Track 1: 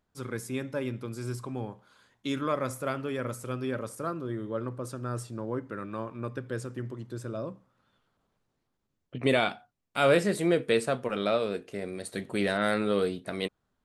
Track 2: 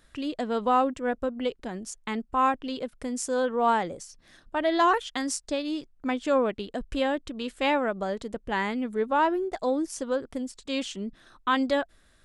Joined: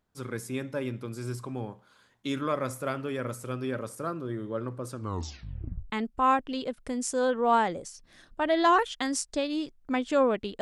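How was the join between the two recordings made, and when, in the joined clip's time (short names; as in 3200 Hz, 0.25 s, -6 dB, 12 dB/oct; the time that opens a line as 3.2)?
track 1
4.93 tape stop 0.97 s
5.9 switch to track 2 from 2.05 s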